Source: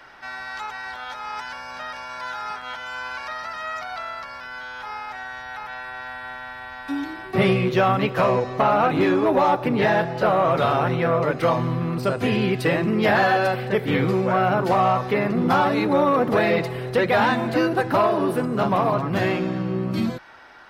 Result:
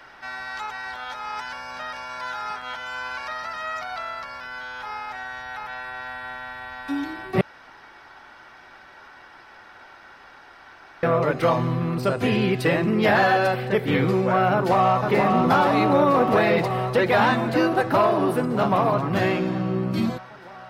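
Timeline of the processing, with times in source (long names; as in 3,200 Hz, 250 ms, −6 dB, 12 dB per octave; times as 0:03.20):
0:07.41–0:11.03: fill with room tone
0:14.54–0:15.01: delay throw 480 ms, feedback 80%, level −3.5 dB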